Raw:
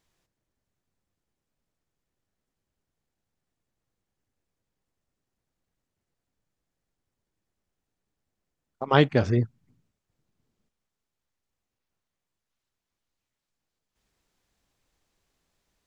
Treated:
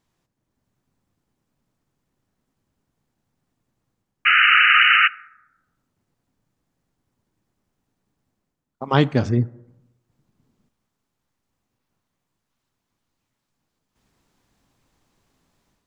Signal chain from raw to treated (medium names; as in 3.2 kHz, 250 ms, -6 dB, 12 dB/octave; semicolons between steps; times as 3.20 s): 4.25–5.08 s: painted sound noise 1.2–3 kHz -16 dBFS; graphic EQ 125/250/1000 Hz +6/+7/+5 dB; level rider gain up to 7 dB; 8.85–9.29 s: treble shelf 4.1 kHz +11 dB; plate-style reverb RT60 0.95 s, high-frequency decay 0.4×, DRR 19 dB; trim -1.5 dB